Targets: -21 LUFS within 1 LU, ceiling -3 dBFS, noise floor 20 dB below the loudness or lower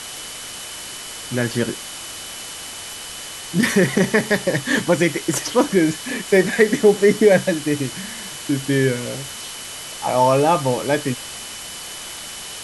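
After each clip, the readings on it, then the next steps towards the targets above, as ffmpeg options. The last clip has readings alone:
steady tone 3000 Hz; tone level -39 dBFS; noise floor -34 dBFS; noise floor target -41 dBFS; loudness -20.5 LUFS; peak -2.0 dBFS; loudness target -21.0 LUFS
-> -af "bandreject=f=3k:w=30"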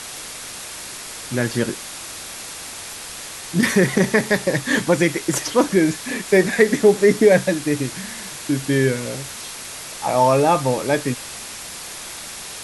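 steady tone none; noise floor -34 dBFS; noise floor target -39 dBFS
-> -af "afftdn=nr=6:nf=-34"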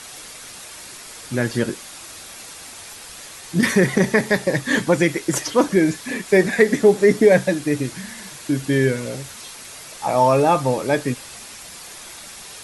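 noise floor -39 dBFS; loudness -19.0 LUFS; peak -2.0 dBFS; loudness target -21.0 LUFS
-> -af "volume=-2dB"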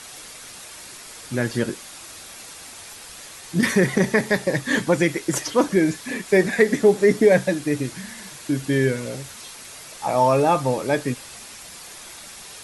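loudness -21.0 LUFS; peak -4.0 dBFS; noise floor -41 dBFS

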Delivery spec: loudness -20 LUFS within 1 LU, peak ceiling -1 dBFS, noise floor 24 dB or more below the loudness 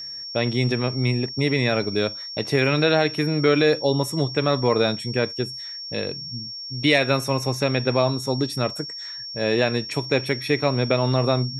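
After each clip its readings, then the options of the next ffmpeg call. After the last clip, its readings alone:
steady tone 5500 Hz; tone level -32 dBFS; loudness -22.5 LUFS; peak -5.0 dBFS; loudness target -20.0 LUFS
-> -af "bandreject=f=5.5k:w=30"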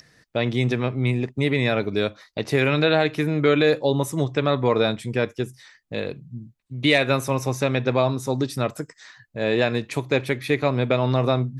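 steady tone none; loudness -22.5 LUFS; peak -5.5 dBFS; loudness target -20.0 LUFS
-> -af "volume=2.5dB"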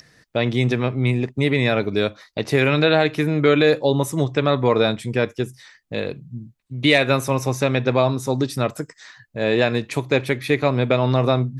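loudness -20.0 LUFS; peak -3.0 dBFS; noise floor -62 dBFS

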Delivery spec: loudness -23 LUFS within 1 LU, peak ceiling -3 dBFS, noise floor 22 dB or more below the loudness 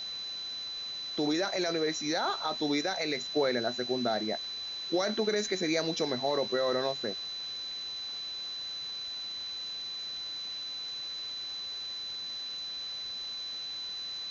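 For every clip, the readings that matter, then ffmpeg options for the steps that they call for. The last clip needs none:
steady tone 4000 Hz; tone level -36 dBFS; noise floor -39 dBFS; noise floor target -55 dBFS; loudness -32.5 LUFS; peak -17.0 dBFS; loudness target -23.0 LUFS
-> -af "bandreject=f=4k:w=30"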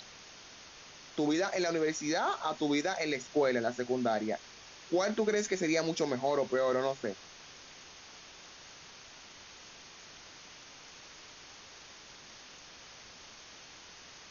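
steady tone none; noise floor -53 dBFS; noise floor target -54 dBFS
-> -af "afftdn=nr=6:nf=-53"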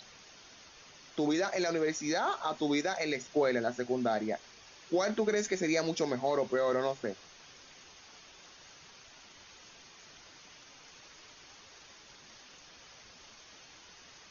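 noise floor -56 dBFS; loudness -32.0 LUFS; peak -17.0 dBFS; loudness target -23.0 LUFS
-> -af "volume=9dB"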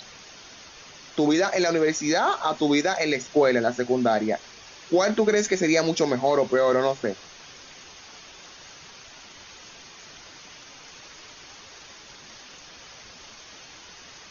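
loudness -23.0 LUFS; peak -8.0 dBFS; noise floor -47 dBFS

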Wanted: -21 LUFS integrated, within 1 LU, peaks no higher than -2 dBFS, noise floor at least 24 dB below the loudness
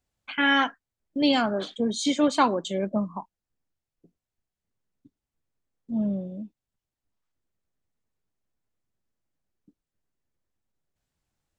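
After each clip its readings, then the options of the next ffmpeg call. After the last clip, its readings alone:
loudness -25.5 LUFS; peak -8.5 dBFS; loudness target -21.0 LUFS
-> -af "volume=4.5dB"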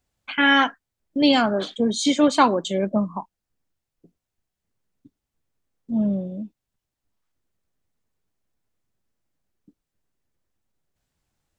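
loudness -21.0 LUFS; peak -4.0 dBFS; noise floor -84 dBFS

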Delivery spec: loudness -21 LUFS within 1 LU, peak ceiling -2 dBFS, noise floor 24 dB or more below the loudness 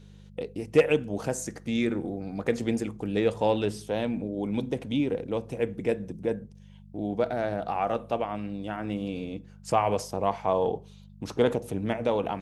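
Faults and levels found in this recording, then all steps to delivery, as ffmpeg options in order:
hum 50 Hz; harmonics up to 200 Hz; hum level -46 dBFS; loudness -29.0 LUFS; peak -9.0 dBFS; loudness target -21.0 LUFS
-> -af "bandreject=f=50:t=h:w=4,bandreject=f=100:t=h:w=4,bandreject=f=150:t=h:w=4,bandreject=f=200:t=h:w=4"
-af "volume=8dB,alimiter=limit=-2dB:level=0:latency=1"

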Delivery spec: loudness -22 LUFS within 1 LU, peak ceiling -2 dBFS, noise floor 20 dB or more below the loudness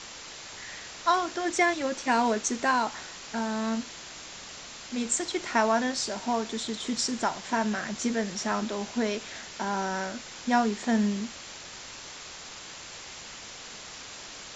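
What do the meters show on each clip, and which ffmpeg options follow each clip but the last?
noise floor -44 dBFS; noise floor target -49 dBFS; loudness -29.0 LUFS; peak -11.0 dBFS; loudness target -22.0 LUFS
-> -af "afftdn=nr=6:nf=-44"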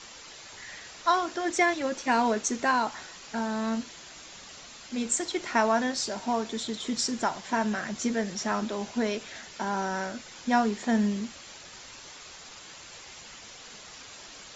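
noise floor -47 dBFS; noise floor target -49 dBFS
-> -af "afftdn=nr=6:nf=-47"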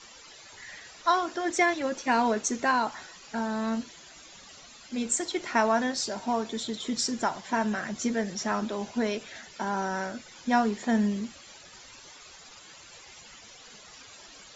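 noise floor -50 dBFS; loudness -29.0 LUFS; peak -11.5 dBFS; loudness target -22.0 LUFS
-> -af "volume=7dB"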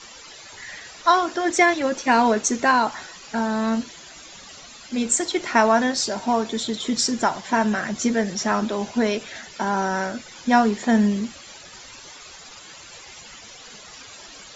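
loudness -22.0 LUFS; peak -4.5 dBFS; noise floor -43 dBFS

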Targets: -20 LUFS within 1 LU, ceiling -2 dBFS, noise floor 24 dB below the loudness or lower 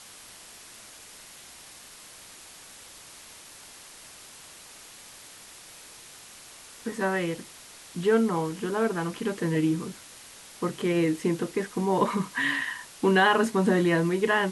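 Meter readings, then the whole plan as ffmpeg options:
noise floor -48 dBFS; noise floor target -50 dBFS; loudness -26.0 LUFS; peak -10.5 dBFS; loudness target -20.0 LUFS
-> -af "afftdn=nr=6:nf=-48"
-af "volume=6dB"

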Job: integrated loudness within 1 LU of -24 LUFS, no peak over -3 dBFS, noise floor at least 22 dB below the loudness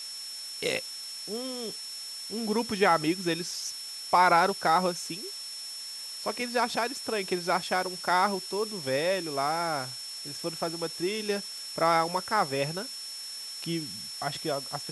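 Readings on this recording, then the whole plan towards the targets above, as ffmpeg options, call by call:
steady tone 5400 Hz; tone level -38 dBFS; noise floor -40 dBFS; noise floor target -52 dBFS; loudness -29.5 LUFS; peak -10.0 dBFS; loudness target -24.0 LUFS
-> -af "bandreject=f=5.4k:w=30"
-af "afftdn=nr=12:nf=-40"
-af "volume=5.5dB"

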